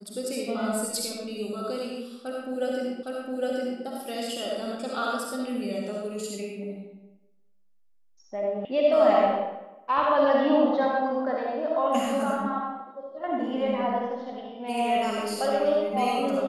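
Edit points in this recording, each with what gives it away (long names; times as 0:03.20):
0:03.03: the same again, the last 0.81 s
0:08.65: cut off before it has died away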